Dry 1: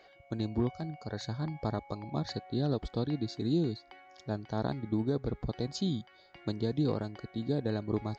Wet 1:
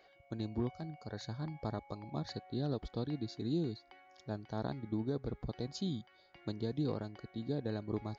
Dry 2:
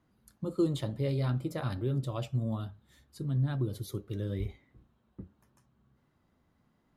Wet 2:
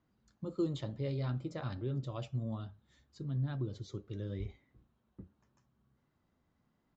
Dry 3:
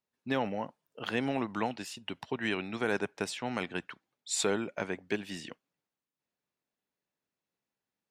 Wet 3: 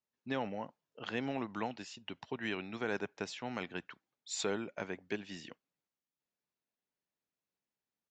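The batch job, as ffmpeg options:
-af "aresample=16000,aresample=44100,volume=0.531"

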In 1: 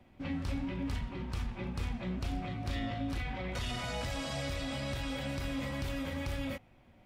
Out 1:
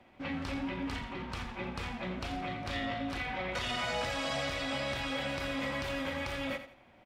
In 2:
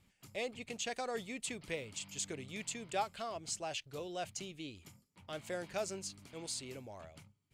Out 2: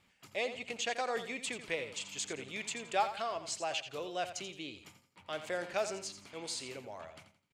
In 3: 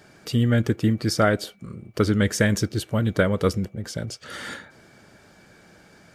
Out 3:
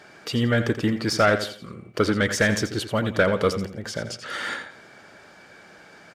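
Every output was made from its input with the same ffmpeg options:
-filter_complex "[0:a]asplit=2[s0][s1];[s1]highpass=f=720:p=1,volume=5.62,asoftclip=type=tanh:threshold=0.596[s2];[s0][s2]amix=inputs=2:normalize=0,lowpass=f=3000:p=1,volume=0.501,aecho=1:1:85|170|255:0.282|0.0874|0.0271,volume=0.75"

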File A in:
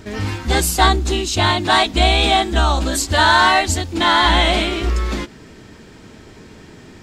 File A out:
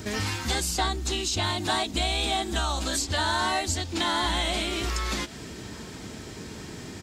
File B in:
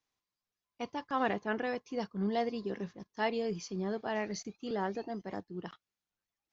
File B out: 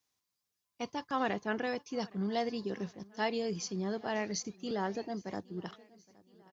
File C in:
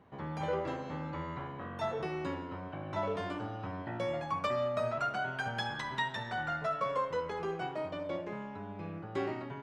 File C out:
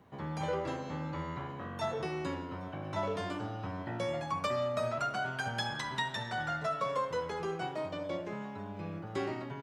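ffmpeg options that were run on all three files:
-filter_complex "[0:a]highpass=51,bass=f=250:g=2,treble=f=4000:g=8,acrossover=split=720|6400[s0][s1][s2];[s0]acompressor=threshold=0.0282:ratio=4[s3];[s1]acompressor=threshold=0.0316:ratio=4[s4];[s2]acompressor=threshold=0.00794:ratio=4[s5];[s3][s4][s5]amix=inputs=3:normalize=0,aecho=1:1:818|1636|2454|3272:0.0631|0.0353|0.0198|0.0111"

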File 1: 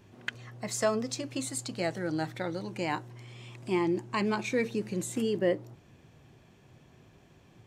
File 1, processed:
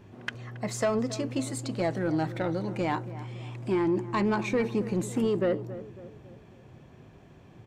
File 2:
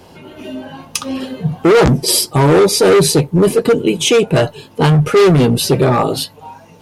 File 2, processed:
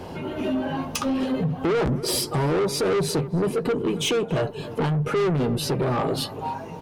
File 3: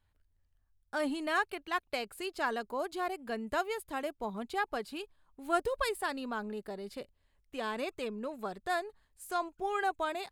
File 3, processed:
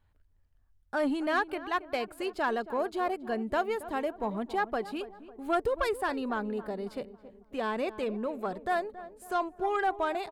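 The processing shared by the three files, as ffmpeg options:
-filter_complex "[0:a]highshelf=f=2700:g=-10,acompressor=threshold=0.0631:ratio=6,asoftclip=type=tanh:threshold=0.0562,asplit=2[s0][s1];[s1]adelay=275,lowpass=f=1300:p=1,volume=0.2,asplit=2[s2][s3];[s3]adelay=275,lowpass=f=1300:p=1,volume=0.5,asplit=2[s4][s5];[s5]adelay=275,lowpass=f=1300:p=1,volume=0.5,asplit=2[s6][s7];[s7]adelay=275,lowpass=f=1300:p=1,volume=0.5,asplit=2[s8][s9];[s9]adelay=275,lowpass=f=1300:p=1,volume=0.5[s10];[s0][s2][s4][s6][s8][s10]amix=inputs=6:normalize=0,volume=2"

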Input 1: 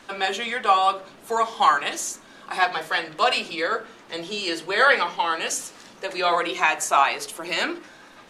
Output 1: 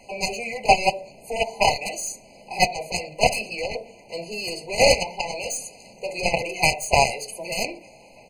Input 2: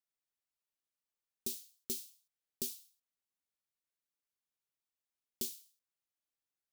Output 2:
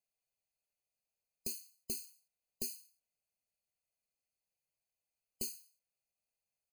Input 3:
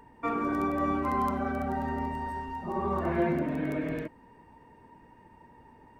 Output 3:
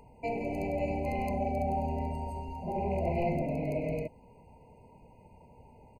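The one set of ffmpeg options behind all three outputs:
-af "aeval=exprs='0.596*(cos(1*acos(clip(val(0)/0.596,-1,1)))-cos(1*PI/2))+0.133*(cos(2*acos(clip(val(0)/0.596,-1,1)))-cos(2*PI/2))+0.0376*(cos(4*acos(clip(val(0)/0.596,-1,1)))-cos(4*PI/2))+0.15*(cos(7*acos(clip(val(0)/0.596,-1,1)))-cos(7*PI/2))+0.00841*(cos(8*acos(clip(val(0)/0.596,-1,1)))-cos(8*PI/2))':c=same,aecho=1:1:1.6:0.61,afftfilt=real='re*eq(mod(floor(b*sr/1024/1000),2),0)':imag='im*eq(mod(floor(b*sr/1024/1000),2),0)':win_size=1024:overlap=0.75,volume=1.5"

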